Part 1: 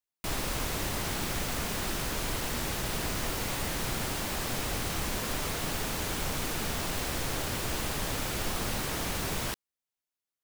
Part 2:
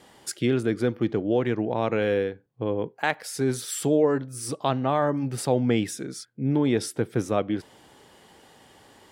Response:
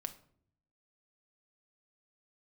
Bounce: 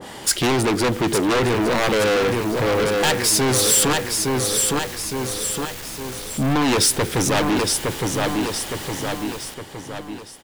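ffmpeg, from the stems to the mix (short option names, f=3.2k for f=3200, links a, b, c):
-filter_complex "[0:a]dynaudnorm=f=320:g=13:m=10.5dB,volume=25dB,asoftclip=hard,volume=-25dB,volume=-10dB,asplit=2[a][b];[b]volume=-18dB[c];[1:a]aeval=exprs='0.398*sin(PI/2*3.98*val(0)/0.398)':c=same,volume=1dB,asplit=3[d][e][f];[d]atrim=end=3.93,asetpts=PTS-STARTPTS,afade=t=out:st=3.926:d=0.004:c=hsin[g];[e]atrim=start=3.93:end=6.3,asetpts=PTS-STARTPTS,volume=0[h];[f]atrim=start=6.3,asetpts=PTS-STARTPTS,afade=t=in:d=0.004:c=hsin[i];[g][h][i]concat=n=3:v=0:a=1,asplit=2[j][k];[k]volume=-7dB[l];[c][l]amix=inputs=2:normalize=0,aecho=0:1:863|1726|2589|3452|4315|5178:1|0.46|0.212|0.0973|0.0448|0.0206[m];[a][j][m]amix=inputs=3:normalize=0,asoftclip=type=tanh:threshold=-17dB,adynamicequalizer=threshold=0.0112:dfrequency=1700:dqfactor=0.7:tfrequency=1700:tqfactor=0.7:attack=5:release=100:ratio=0.375:range=2.5:mode=boostabove:tftype=highshelf"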